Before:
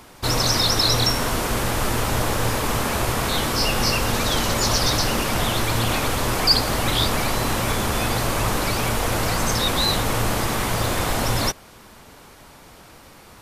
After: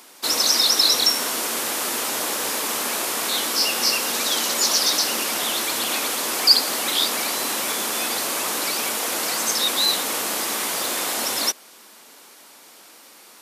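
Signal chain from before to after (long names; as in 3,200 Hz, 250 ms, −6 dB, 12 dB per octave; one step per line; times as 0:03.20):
high-pass filter 240 Hz 24 dB per octave
high-shelf EQ 2,700 Hz +11.5 dB
level −5.5 dB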